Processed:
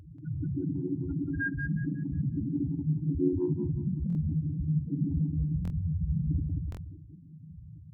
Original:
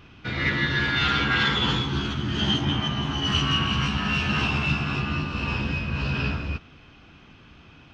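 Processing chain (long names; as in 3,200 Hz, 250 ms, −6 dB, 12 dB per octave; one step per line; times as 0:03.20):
reverb reduction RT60 0.86 s
high-pass filter 56 Hz 12 dB per octave
low-shelf EQ 430 Hz +11.5 dB
hum removal 302.3 Hz, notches 4
in parallel at 0 dB: downward compressor 8 to 1, threshold −25 dBFS, peak gain reduction 14 dB
on the sum: brickwall limiter −13 dBFS, peak gain reduction 9.5 dB
reversed playback
upward compression, threshold −36 dBFS
reversed playback
feedback delay network reverb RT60 0.83 s, low-frequency decay 1.05×, high-frequency decay 0.45×, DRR −1 dB
spectral peaks only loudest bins 1
formants moved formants +5 semitones
tape delay 182 ms, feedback 38%, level −3.5 dB, low-pass 2,000 Hz
buffer that repeats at 0:04.08/0:05.63/0:06.70, samples 1,024, times 2
level −3.5 dB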